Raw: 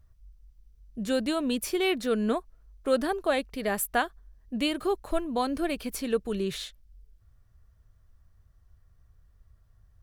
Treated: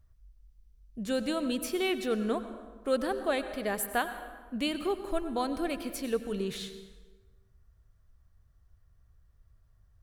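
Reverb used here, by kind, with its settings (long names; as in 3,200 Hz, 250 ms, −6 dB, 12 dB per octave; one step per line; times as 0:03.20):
dense smooth reverb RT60 1.4 s, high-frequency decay 0.65×, pre-delay 80 ms, DRR 10 dB
level −3.5 dB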